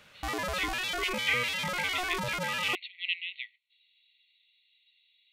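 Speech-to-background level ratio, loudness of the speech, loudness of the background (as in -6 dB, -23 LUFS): -2.0 dB, -34.0 LUFS, -32.0 LUFS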